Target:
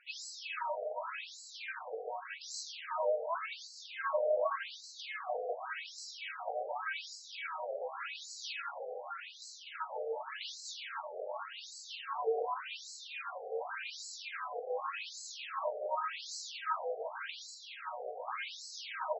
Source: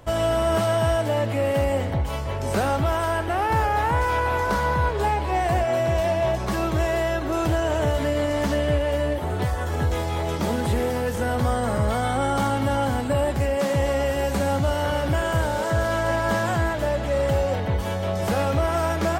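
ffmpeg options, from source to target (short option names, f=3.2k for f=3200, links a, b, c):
-filter_complex "[0:a]bandreject=f=2.2k:w=26,afreqshift=-380,acrossover=split=130|1600[a][b][c];[b]alimiter=limit=-21dB:level=0:latency=1:release=29[d];[a][d][c]amix=inputs=3:normalize=0,flanger=delay=6.8:depth=8:regen=40:speed=0.58:shape=triangular,asplit=2[e][f];[f]asplit=4[g][h][i][j];[g]adelay=330,afreqshift=43,volume=-9dB[k];[h]adelay=660,afreqshift=86,volume=-17.6dB[l];[i]adelay=990,afreqshift=129,volume=-26.3dB[m];[j]adelay=1320,afreqshift=172,volume=-34.9dB[n];[k][l][m][n]amix=inputs=4:normalize=0[o];[e][o]amix=inputs=2:normalize=0,afftfilt=real='re*between(b*sr/1024,550*pow(5700/550,0.5+0.5*sin(2*PI*0.87*pts/sr))/1.41,550*pow(5700/550,0.5+0.5*sin(2*PI*0.87*pts/sr))*1.41)':imag='im*between(b*sr/1024,550*pow(5700/550,0.5+0.5*sin(2*PI*0.87*pts/sr))/1.41,550*pow(5700/550,0.5+0.5*sin(2*PI*0.87*pts/sr))*1.41)':win_size=1024:overlap=0.75,volume=3dB"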